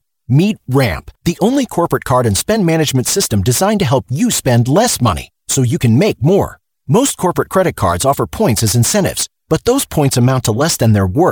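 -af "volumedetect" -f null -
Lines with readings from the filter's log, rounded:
mean_volume: -13.4 dB
max_volume: -1.2 dB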